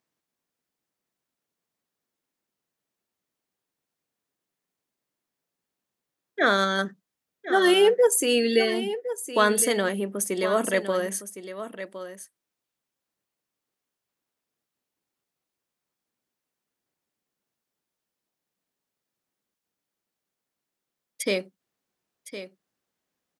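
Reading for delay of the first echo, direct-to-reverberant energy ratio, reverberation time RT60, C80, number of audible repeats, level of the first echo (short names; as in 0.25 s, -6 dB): 1.061 s, none, none, none, 1, -12.0 dB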